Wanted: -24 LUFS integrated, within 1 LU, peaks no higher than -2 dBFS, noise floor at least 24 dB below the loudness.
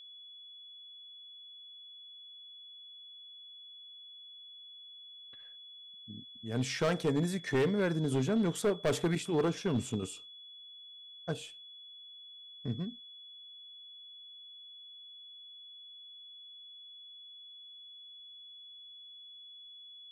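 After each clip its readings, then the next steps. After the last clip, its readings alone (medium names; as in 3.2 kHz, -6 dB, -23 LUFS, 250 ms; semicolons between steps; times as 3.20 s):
clipped samples 0.6%; clipping level -24.0 dBFS; steady tone 3.4 kHz; tone level -49 dBFS; loudness -33.0 LUFS; peak level -24.0 dBFS; loudness target -24.0 LUFS
-> clip repair -24 dBFS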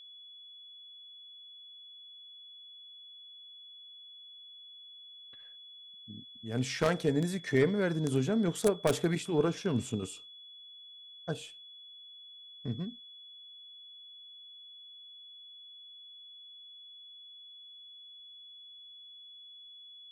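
clipped samples 0.0%; steady tone 3.4 kHz; tone level -49 dBFS
-> band-stop 3.4 kHz, Q 30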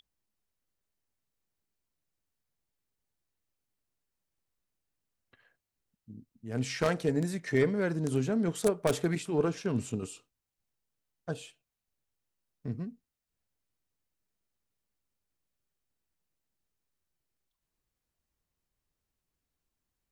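steady tone not found; loudness -31.5 LUFS; peak level -14.5 dBFS; loudness target -24.0 LUFS
-> trim +7.5 dB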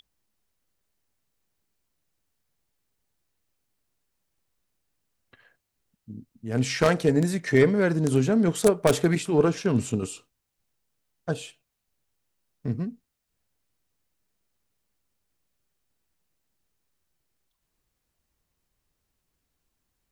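loudness -24.0 LUFS; peak level -7.0 dBFS; noise floor -80 dBFS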